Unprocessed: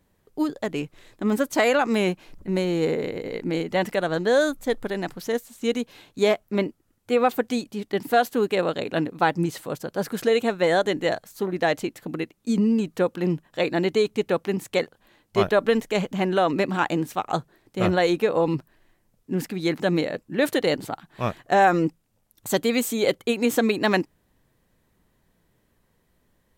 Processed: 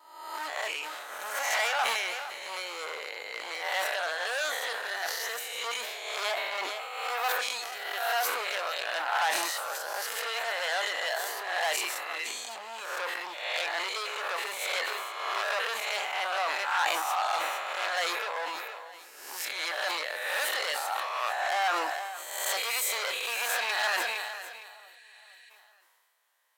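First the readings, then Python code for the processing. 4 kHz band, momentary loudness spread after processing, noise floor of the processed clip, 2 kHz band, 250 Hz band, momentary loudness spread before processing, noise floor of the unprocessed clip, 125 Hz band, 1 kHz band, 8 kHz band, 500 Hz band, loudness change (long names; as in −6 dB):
+2.0 dB, 9 LU, −54 dBFS, +0.5 dB, −31.0 dB, 9 LU, −68 dBFS, below −40 dB, −3.5 dB, +3.5 dB, −14.5 dB, −6.5 dB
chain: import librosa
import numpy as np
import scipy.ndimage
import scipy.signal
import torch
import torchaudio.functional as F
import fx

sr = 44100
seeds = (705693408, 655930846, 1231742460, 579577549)

p1 = fx.spec_swells(x, sr, rise_s=0.89)
p2 = fx.rider(p1, sr, range_db=3, speed_s=0.5)
p3 = p1 + (p2 * 10.0 ** (-0.5 / 20.0))
p4 = fx.vibrato(p3, sr, rate_hz=0.36, depth_cents=5.8)
p5 = 10.0 ** (-10.5 / 20.0) * np.tanh(p4 / 10.0 ** (-10.5 / 20.0))
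p6 = fx.doubler(p5, sr, ms=26.0, db=-12.5)
p7 = p6 + fx.echo_feedback(p6, sr, ms=461, feedback_pct=42, wet_db=-16.0, dry=0)
p8 = fx.spec_repair(p7, sr, seeds[0], start_s=24.71, length_s=0.76, low_hz=1500.0, high_hz=11000.0, source='before')
p9 = np.clip(10.0 ** (14.0 / 20.0) * p8, -1.0, 1.0) / 10.0 ** (14.0 / 20.0)
p10 = scipy.signal.sosfilt(scipy.signal.butter(4, 800.0, 'highpass', fs=sr, output='sos'), p9)
p11 = fx.sustainer(p10, sr, db_per_s=28.0)
y = p11 * 10.0 ** (-6.5 / 20.0)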